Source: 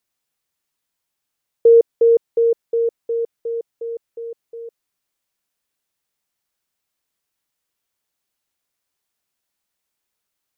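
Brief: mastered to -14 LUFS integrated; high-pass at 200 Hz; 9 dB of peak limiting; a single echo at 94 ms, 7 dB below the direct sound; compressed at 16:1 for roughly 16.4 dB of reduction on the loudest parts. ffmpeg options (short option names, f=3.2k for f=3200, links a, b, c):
-af "highpass=200,acompressor=threshold=-24dB:ratio=16,alimiter=limit=-22.5dB:level=0:latency=1,aecho=1:1:94:0.447,volume=18dB"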